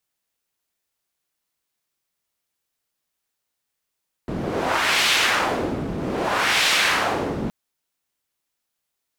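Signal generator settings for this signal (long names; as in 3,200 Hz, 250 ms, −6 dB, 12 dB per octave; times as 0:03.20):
wind from filtered noise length 3.22 s, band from 220 Hz, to 2,900 Hz, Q 1.1, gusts 2, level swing 8 dB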